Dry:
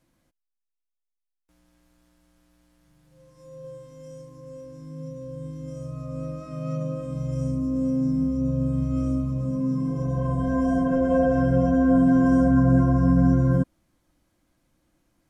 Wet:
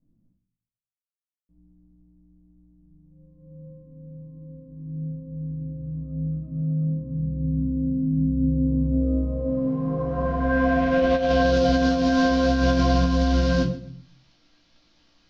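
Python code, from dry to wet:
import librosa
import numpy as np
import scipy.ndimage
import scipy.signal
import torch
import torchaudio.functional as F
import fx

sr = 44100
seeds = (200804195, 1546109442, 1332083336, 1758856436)

p1 = fx.cvsd(x, sr, bps=32000)
p2 = fx.peak_eq(p1, sr, hz=2300.0, db=-2.5, octaves=0.6)
p3 = fx.room_shoebox(p2, sr, seeds[0], volume_m3=310.0, walls='furnished', distance_m=1.7)
p4 = fx.filter_sweep_lowpass(p3, sr, from_hz=200.0, to_hz=4500.0, start_s=8.24, end_s=11.58, q=1.7)
p5 = fx.tilt_shelf(p4, sr, db=-4.5, hz=1100.0)
p6 = fx.doubler(p5, sr, ms=17.0, db=-6.0)
p7 = p6 + fx.echo_feedback(p6, sr, ms=128, feedback_pct=27, wet_db=-17.5, dry=0)
p8 = fx.over_compress(p7, sr, threshold_db=-20.0, ratio=-0.5)
y = p8 * librosa.db_to_amplitude(1.5)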